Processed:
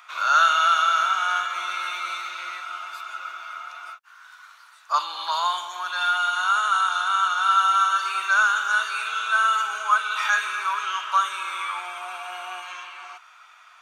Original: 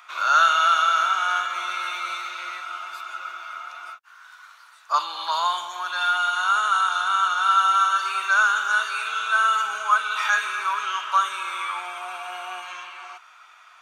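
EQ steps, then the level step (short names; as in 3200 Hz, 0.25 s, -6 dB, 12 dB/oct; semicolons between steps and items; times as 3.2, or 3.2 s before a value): low shelf 370 Hz -6.5 dB; 0.0 dB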